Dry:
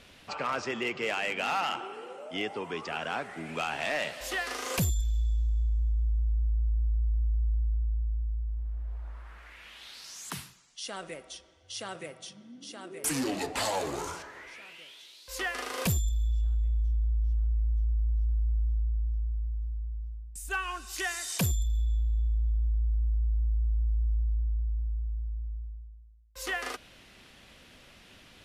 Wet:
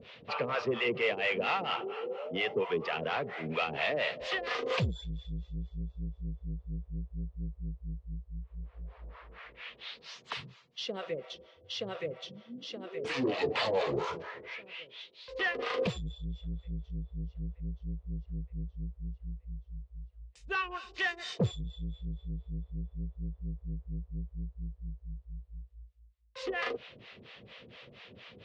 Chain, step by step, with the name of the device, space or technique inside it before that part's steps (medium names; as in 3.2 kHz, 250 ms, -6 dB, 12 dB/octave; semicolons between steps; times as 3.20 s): guitar amplifier with harmonic tremolo (harmonic tremolo 4.3 Hz, depth 100%, crossover 550 Hz; saturation -31 dBFS, distortion -11 dB; cabinet simulation 110–3900 Hz, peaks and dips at 120 Hz +5 dB, 290 Hz -7 dB, 470 Hz +8 dB, 820 Hz -4 dB, 1.5 kHz -5 dB); trim +8 dB